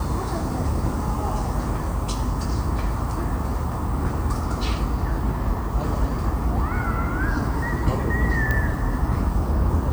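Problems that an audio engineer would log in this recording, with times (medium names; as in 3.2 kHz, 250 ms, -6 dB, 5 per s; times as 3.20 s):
8.51 s: pop -11 dBFS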